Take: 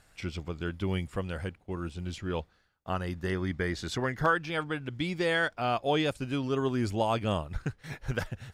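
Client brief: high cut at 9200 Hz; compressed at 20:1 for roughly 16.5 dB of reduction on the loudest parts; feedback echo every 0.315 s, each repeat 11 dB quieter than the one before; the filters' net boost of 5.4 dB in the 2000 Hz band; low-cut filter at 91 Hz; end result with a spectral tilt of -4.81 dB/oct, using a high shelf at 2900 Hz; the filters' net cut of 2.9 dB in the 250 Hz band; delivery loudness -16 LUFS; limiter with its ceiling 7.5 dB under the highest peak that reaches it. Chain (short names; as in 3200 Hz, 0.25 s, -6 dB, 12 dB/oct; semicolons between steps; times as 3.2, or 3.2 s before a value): HPF 91 Hz; LPF 9200 Hz; bell 250 Hz -4 dB; bell 2000 Hz +6 dB; high shelf 2900 Hz +3.5 dB; compressor 20:1, threshold -35 dBFS; limiter -29.5 dBFS; feedback echo 0.315 s, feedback 28%, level -11 dB; gain +25.5 dB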